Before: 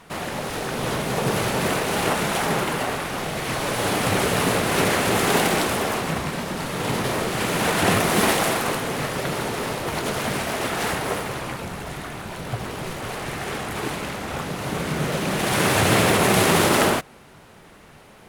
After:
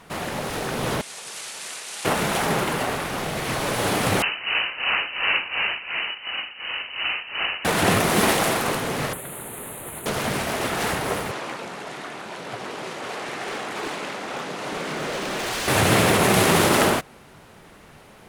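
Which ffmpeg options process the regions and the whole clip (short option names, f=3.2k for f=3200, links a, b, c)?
-filter_complex "[0:a]asettb=1/sr,asplit=3[a][b][c];[a]atrim=end=1.014[d];[b]atrim=start=1.01:end=2.05,asetpts=PTS-STARTPTS,afade=t=in:d=0.004:c=qsin,afade=t=out:st=1.036:d=0.004:c=qsin,lowpass=f=9.1k:w=0.5412,lowpass=f=9.1k:w=1.3066,aderivative[e];[c]atrim=start=2.046[f];[d][e]acrossfade=d=0.004:c1=hsin:c2=qsin[g];[g][f]acrossfade=d=0.004:c1=qsin:c2=hsin,asettb=1/sr,asplit=3[h][i][j];[h]atrim=end=4.224[k];[i]atrim=start=4.22:end=7.65,asetpts=PTS-STARTPTS,afade=t=in:d=0.004:c=qsin,afade=t=out:st=3.426:d=0.004:c=qsin,tremolo=f=2.8:d=0.81,asplit=2[l][m];[m]adelay=19,volume=-14dB[n];[l][n]amix=inputs=2:normalize=0,atrim=end_sample=151263,lowpass=f=2.6k:t=q:w=0.5098,lowpass=f=2.6k:t=q:w=0.6013,lowpass=f=2.6k:t=q:w=0.9,lowpass=f=2.6k:t=q:w=2.563,afreqshift=-3100[o];[j]atrim=start=7.646[p];[k][o]acrossfade=d=0.004:c1=hsin:c2=qsin[q];[q][p]acrossfade=d=0.004:c1=qsin:c2=hsin,asettb=1/sr,asplit=3[r][s][t];[r]atrim=end=9.134[u];[s]atrim=start=9.13:end=10.06,asetpts=PTS-STARTPTS,afade=t=in:d=0.004:c=qsin,afade=t=out:st=0.926:d=0.004:c=qsin,highshelf=f=7.5k:t=q:w=1.5:g=12.5,acrossover=split=370|1400[v][w][x];[v]acompressor=threshold=-43dB:ratio=4[y];[w]acompressor=threshold=-43dB:ratio=4[z];[x]acompressor=threshold=-37dB:ratio=4[aa];[y][z][aa]amix=inputs=3:normalize=0,asuperstop=centerf=5300:order=4:qfactor=1.8[ab];[t]atrim=start=10.056[ac];[u][ab]acrossfade=d=0.004:c1=hsin:c2=qsin[ad];[ad][ac]acrossfade=d=0.004:c1=qsin:c2=hsin,asettb=1/sr,asplit=3[ae][af][ag];[ae]atrim=end=11.314[ah];[af]atrim=start=11.31:end=15.68,asetpts=PTS-STARTPTS,afade=t=in:d=0.004:c=qsin,afade=t=out:st=4.366:d=0.004:c=qsin,highpass=280,lowpass=7.6k,aeval=exprs='0.075*(abs(mod(val(0)/0.075+3,4)-2)-1)':c=same[ai];[ag]atrim=start=15.676[aj];[ah][ai]acrossfade=d=0.004:c1=hsin:c2=qsin[ak];[ak][aj]acrossfade=d=0.004:c1=qsin:c2=hsin"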